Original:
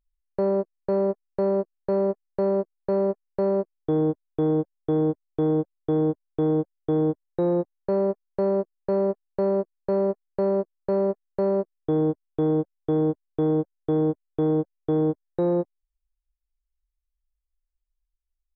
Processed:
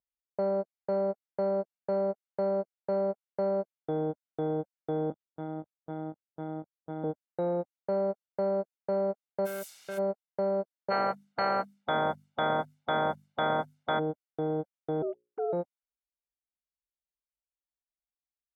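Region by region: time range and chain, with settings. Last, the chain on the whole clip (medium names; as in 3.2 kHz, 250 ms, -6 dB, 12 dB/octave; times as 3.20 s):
5.10–7.04 s: peaking EQ 440 Hz -10 dB 1 oct + LPC vocoder at 8 kHz pitch kept
9.45–9.97 s: added noise violet -35 dBFS + hard clipper -28 dBFS
10.90–13.98 s: spectral peaks clipped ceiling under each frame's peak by 30 dB + hum notches 50/100/150/200/250 Hz
15.02–15.53 s: formants replaced by sine waves + hum notches 60/120/180/240/300/360/420/480/540 Hz
whole clip: Bessel high-pass 240 Hz; level-controlled noise filter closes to 750 Hz, open at -26 dBFS; comb 1.4 ms, depth 51%; trim -4.5 dB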